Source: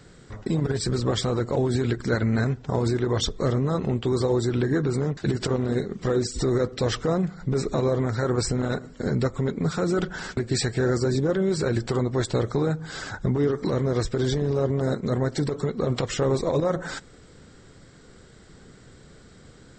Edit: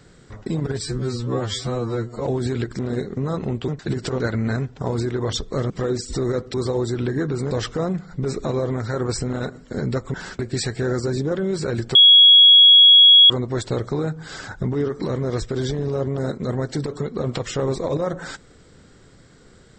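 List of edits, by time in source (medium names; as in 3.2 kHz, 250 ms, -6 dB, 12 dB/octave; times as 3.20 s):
0.83–1.54 s: stretch 2×
2.08–3.58 s: swap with 5.58–5.96 s
4.09–5.06 s: move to 6.80 s
9.43–10.12 s: delete
11.93 s: add tone 3.33 kHz -6.5 dBFS 1.35 s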